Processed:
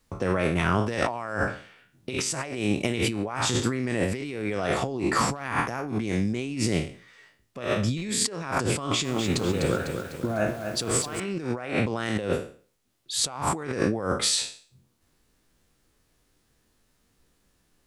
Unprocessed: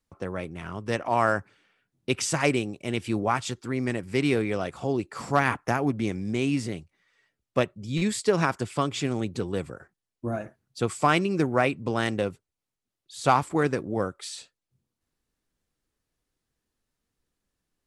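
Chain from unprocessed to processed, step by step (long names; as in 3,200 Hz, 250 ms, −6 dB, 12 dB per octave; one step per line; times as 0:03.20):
peak hold with a decay on every bin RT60 0.43 s
compressor whose output falls as the input rises −34 dBFS, ratio −1
0:08.79–0:11.20: feedback echo at a low word length 250 ms, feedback 55%, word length 8 bits, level −6.5 dB
level +5.5 dB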